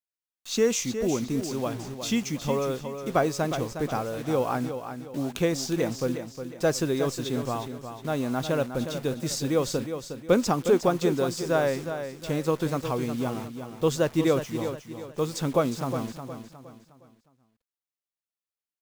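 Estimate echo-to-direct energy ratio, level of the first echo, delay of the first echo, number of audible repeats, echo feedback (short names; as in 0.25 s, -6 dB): -8.5 dB, -9.0 dB, 0.361 s, 4, 37%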